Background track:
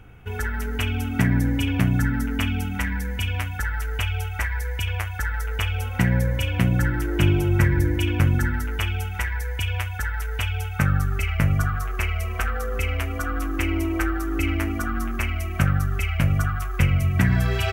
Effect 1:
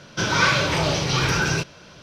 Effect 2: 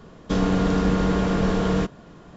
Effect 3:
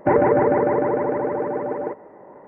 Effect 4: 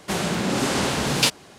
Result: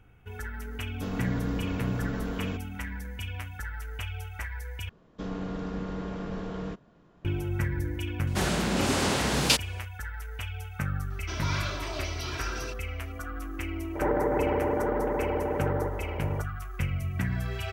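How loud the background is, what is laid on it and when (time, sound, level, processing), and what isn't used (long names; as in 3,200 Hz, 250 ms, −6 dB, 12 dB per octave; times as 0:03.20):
background track −10.5 dB
0:00.71: mix in 2 −13.5 dB
0:04.89: overwrite with 2 −13.5 dB + low-pass filter 3,700 Hz 6 dB per octave
0:08.27: mix in 4 −3.5 dB
0:11.10: mix in 1 −16.5 dB + comb filter 3 ms, depth 90%
0:13.95: mix in 3 −12.5 dB + compressor on every frequency bin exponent 0.4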